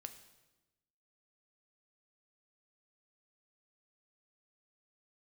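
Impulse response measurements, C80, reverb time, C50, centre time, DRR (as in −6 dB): 13.0 dB, 1.1 s, 11.5 dB, 12 ms, 7.5 dB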